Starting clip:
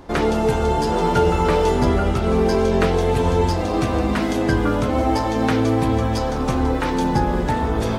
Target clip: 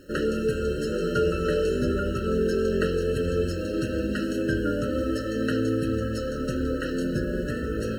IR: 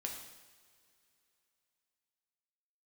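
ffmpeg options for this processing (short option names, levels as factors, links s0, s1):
-af "lowshelf=f=140:g=-7,acrusher=bits=9:dc=4:mix=0:aa=0.000001,afftfilt=real='re*eq(mod(floor(b*sr/1024/640),2),0)':imag='im*eq(mod(floor(b*sr/1024/640),2),0)':win_size=1024:overlap=0.75,volume=0.596"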